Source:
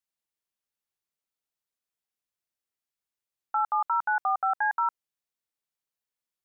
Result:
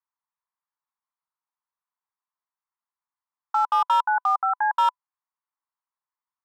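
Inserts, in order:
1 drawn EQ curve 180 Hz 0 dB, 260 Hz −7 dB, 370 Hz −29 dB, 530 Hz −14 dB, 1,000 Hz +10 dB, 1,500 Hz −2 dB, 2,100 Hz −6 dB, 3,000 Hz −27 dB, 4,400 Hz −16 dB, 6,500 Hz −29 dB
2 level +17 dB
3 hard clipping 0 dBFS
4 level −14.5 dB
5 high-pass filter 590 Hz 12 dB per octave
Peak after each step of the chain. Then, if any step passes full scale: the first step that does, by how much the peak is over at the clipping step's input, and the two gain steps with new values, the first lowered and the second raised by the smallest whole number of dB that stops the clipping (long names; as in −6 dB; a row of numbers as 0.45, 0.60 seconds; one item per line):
−13.5, +3.5, 0.0, −14.5, −12.0 dBFS
step 2, 3.5 dB
step 2 +13 dB, step 4 −10.5 dB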